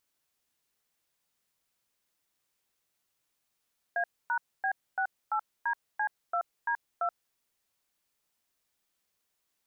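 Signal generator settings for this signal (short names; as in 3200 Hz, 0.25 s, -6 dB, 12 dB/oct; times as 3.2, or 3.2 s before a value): DTMF "A#B68DC2D2", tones 79 ms, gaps 0.26 s, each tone -29 dBFS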